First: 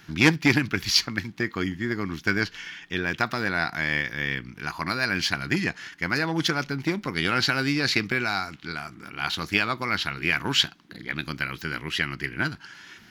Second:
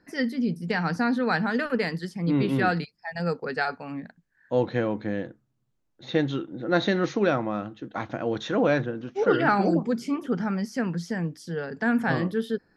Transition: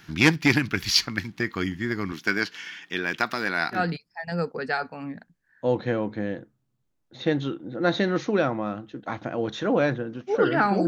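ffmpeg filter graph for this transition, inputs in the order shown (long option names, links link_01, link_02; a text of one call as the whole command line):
ffmpeg -i cue0.wav -i cue1.wav -filter_complex "[0:a]asettb=1/sr,asplit=3[link_01][link_02][link_03];[link_01]atrim=end=2.124[link_04];[link_02]atrim=start=2.12:end=3.81,asetpts=PTS-STARTPTS,afade=type=in:duration=0.004:curve=qsin,afade=type=out:start_time=1.686:duration=0.004:curve=qsin,highpass=210[link_05];[link_03]atrim=start=3.806[link_06];[link_04][link_05]acrossfade=duration=0.004:curve1=hsin:curve2=qsin[link_07];[link_07][link_06]acrossfade=duration=0.004:curve1=qsin:curve2=hsin,apad=whole_dur=10.87,atrim=end=10.87,atrim=end=3.81,asetpts=PTS-STARTPTS[link_08];[1:a]atrim=start=2.59:end=9.75,asetpts=PTS-STARTPTS[link_09];[link_08][link_09]acrossfade=duration=0.1:curve1=tri:curve2=tri" out.wav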